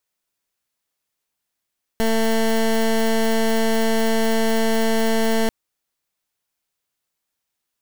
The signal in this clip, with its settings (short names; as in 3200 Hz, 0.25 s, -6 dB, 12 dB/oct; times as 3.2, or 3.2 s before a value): pulse 224 Hz, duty 18% -18 dBFS 3.49 s